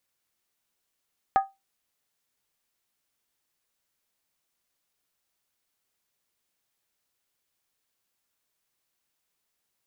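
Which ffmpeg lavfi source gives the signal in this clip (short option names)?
-f lavfi -i "aevalsrc='0.211*pow(10,-3*t/0.21)*sin(2*PI*780*t)+0.075*pow(10,-3*t/0.166)*sin(2*PI*1243.3*t)+0.0266*pow(10,-3*t/0.144)*sin(2*PI*1666.1*t)+0.00944*pow(10,-3*t/0.139)*sin(2*PI*1790.9*t)+0.00335*pow(10,-3*t/0.129)*sin(2*PI*2069.3*t)':d=0.63:s=44100"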